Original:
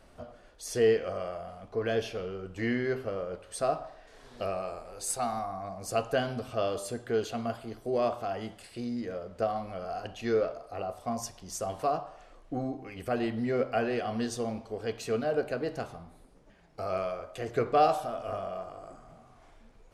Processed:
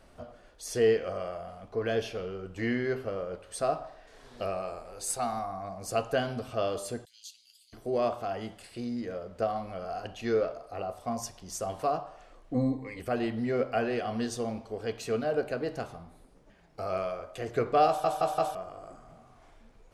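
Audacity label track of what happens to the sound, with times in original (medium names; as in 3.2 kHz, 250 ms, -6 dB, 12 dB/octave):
7.050000	7.730000	inverse Chebyshev high-pass stop band from 1.2 kHz, stop band 60 dB
12.540000	13.000000	rippled EQ curve crests per octave 1, crest to trough 16 dB
17.870000	17.870000	stutter in place 0.17 s, 4 plays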